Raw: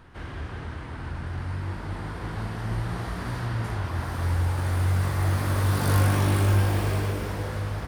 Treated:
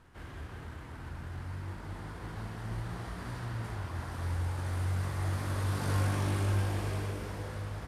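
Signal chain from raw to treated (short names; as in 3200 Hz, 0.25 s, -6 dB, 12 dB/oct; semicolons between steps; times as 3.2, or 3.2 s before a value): CVSD 64 kbps; gain -8.5 dB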